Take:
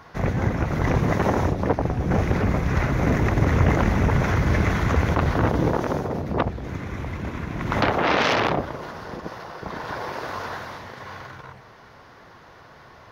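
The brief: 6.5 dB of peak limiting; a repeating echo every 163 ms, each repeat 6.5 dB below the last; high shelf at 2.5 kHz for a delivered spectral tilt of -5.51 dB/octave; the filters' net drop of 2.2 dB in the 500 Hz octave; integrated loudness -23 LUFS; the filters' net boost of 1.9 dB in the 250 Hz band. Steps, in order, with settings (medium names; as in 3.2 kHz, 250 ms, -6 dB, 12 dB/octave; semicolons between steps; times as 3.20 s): peaking EQ 250 Hz +3.5 dB; peaking EQ 500 Hz -3.5 dB; treble shelf 2.5 kHz -5.5 dB; peak limiter -13 dBFS; feedback delay 163 ms, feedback 47%, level -6.5 dB; trim +0.5 dB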